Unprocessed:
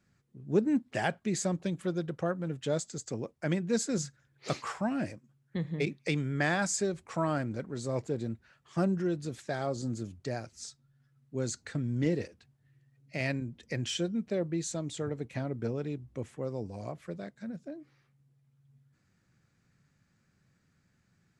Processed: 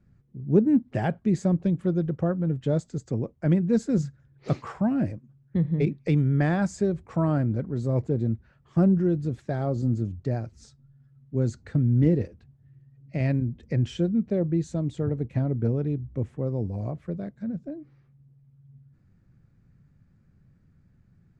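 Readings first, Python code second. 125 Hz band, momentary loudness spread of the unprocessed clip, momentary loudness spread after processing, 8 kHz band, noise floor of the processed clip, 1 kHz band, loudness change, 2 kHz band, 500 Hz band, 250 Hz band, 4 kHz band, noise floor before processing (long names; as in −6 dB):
+11.0 dB, 12 LU, 11 LU, below −10 dB, −62 dBFS, +1.0 dB, +7.5 dB, −3.5 dB, +4.5 dB, +8.5 dB, can't be measured, −72 dBFS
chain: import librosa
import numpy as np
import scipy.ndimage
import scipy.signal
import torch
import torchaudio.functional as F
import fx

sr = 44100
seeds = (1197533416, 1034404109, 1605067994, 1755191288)

y = fx.tilt_eq(x, sr, slope=-4.0)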